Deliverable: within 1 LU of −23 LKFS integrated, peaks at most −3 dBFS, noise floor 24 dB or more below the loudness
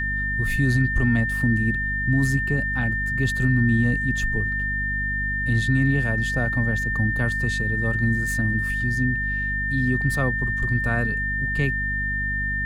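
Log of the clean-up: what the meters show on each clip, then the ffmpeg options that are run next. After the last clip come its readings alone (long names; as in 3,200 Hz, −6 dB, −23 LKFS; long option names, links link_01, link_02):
mains hum 50 Hz; hum harmonics up to 250 Hz; level of the hum −27 dBFS; interfering tone 1,800 Hz; level of the tone −24 dBFS; integrated loudness −22.5 LKFS; sample peak −9.5 dBFS; target loudness −23.0 LKFS
→ -af "bandreject=frequency=50:width_type=h:width=4,bandreject=frequency=100:width_type=h:width=4,bandreject=frequency=150:width_type=h:width=4,bandreject=frequency=200:width_type=h:width=4,bandreject=frequency=250:width_type=h:width=4"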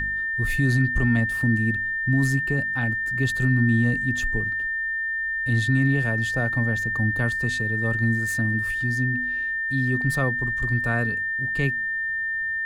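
mains hum none found; interfering tone 1,800 Hz; level of the tone −24 dBFS
→ -af "bandreject=frequency=1800:width=30"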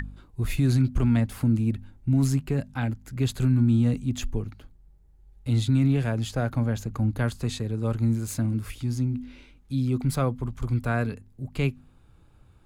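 interfering tone none found; integrated loudness −26.5 LKFS; sample peak −12.5 dBFS; target loudness −23.0 LKFS
→ -af "volume=3.5dB"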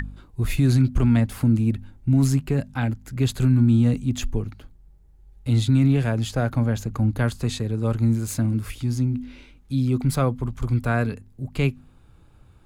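integrated loudness −23.0 LKFS; sample peak −9.0 dBFS; background noise floor −52 dBFS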